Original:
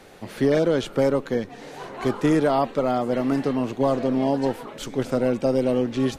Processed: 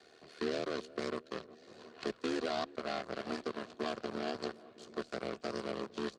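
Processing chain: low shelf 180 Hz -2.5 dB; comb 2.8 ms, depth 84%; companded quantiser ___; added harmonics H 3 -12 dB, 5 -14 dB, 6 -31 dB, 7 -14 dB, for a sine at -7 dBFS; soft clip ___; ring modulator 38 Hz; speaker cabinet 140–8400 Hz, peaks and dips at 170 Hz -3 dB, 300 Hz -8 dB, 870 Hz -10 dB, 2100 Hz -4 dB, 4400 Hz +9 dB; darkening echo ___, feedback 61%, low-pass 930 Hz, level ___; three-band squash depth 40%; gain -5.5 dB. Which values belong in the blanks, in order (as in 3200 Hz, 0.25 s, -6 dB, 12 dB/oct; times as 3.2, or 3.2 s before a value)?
8-bit, -17 dBFS, 0.361 s, -20 dB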